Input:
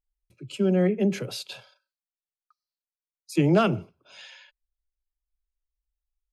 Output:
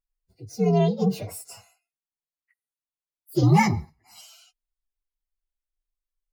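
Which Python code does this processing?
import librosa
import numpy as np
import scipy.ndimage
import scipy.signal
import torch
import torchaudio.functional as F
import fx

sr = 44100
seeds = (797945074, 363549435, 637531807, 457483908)

y = fx.partial_stretch(x, sr, pct=128)
y = fx.comb(y, sr, ms=1.0, depth=0.88, at=(3.43, 4.21))
y = y * librosa.db_to_amplitude(2.5)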